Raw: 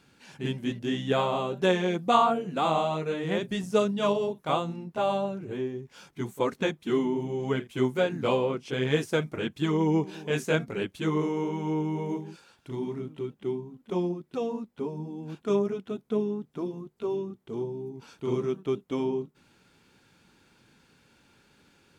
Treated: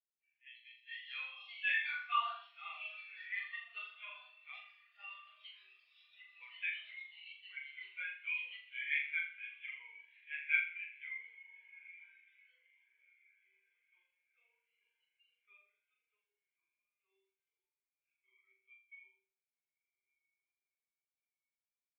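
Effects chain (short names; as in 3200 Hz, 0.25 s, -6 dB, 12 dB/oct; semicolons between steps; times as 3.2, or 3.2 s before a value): ladder band-pass 2400 Hz, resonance 60%; on a send: diffused feedback echo 1.46 s, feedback 61%, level -9.5 dB; on the sum: echoes that change speed 0.182 s, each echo +4 st, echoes 3, each echo -6 dB; flutter echo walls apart 7.1 m, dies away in 1 s; spectral expander 2.5:1; gain +4 dB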